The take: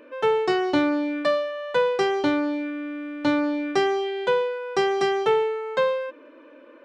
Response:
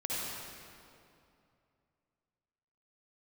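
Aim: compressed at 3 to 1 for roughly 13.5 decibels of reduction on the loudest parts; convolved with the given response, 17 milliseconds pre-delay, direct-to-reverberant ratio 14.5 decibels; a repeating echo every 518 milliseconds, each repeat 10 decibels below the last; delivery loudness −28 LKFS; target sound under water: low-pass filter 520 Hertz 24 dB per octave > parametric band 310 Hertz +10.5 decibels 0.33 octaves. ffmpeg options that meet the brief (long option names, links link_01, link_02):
-filter_complex "[0:a]acompressor=threshold=-36dB:ratio=3,aecho=1:1:518|1036|1554|2072:0.316|0.101|0.0324|0.0104,asplit=2[link_01][link_02];[1:a]atrim=start_sample=2205,adelay=17[link_03];[link_02][link_03]afir=irnorm=-1:irlink=0,volume=-20dB[link_04];[link_01][link_04]amix=inputs=2:normalize=0,lowpass=frequency=520:width=0.5412,lowpass=frequency=520:width=1.3066,equalizer=frequency=310:width_type=o:width=0.33:gain=10.5,volume=1dB"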